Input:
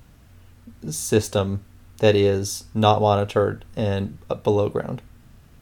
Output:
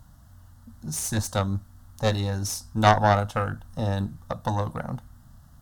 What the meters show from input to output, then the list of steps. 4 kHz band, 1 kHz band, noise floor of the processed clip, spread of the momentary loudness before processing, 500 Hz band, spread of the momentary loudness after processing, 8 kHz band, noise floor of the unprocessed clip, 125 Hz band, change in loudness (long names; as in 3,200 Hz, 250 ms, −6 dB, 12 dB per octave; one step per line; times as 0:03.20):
−4.0 dB, 0.0 dB, −52 dBFS, 13 LU, −9.0 dB, 13 LU, −1.0 dB, −51 dBFS, −1.0 dB, −4.0 dB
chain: phaser with its sweep stopped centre 1,000 Hz, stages 4
harmonic generator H 4 −11 dB, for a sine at −5 dBFS